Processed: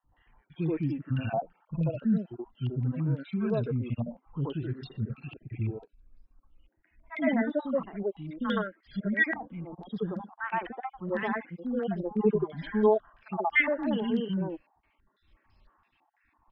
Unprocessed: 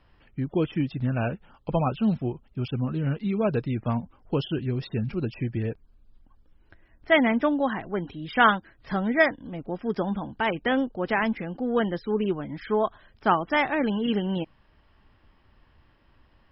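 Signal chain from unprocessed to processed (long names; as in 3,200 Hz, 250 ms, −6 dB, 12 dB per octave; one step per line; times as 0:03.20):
time-frequency cells dropped at random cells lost 39%
0:12.01–0:12.85: comb filter 5 ms, depth 91%
three-band delay without the direct sound highs, lows, mids 40/120 ms, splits 290/1,500 Hz
harmonic and percussive parts rebalanced percussive −16 dB
low-pass on a step sequencer 6 Hz 790–4,800 Hz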